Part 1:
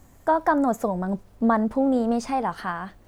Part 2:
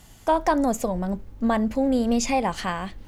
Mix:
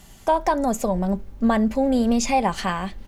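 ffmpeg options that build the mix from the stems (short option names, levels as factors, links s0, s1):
-filter_complex "[0:a]volume=0.158[s0];[1:a]aecho=1:1:5.1:0.33,alimiter=limit=0.266:level=0:latency=1:release=438,volume=-1,volume=1.26[s1];[s0][s1]amix=inputs=2:normalize=0"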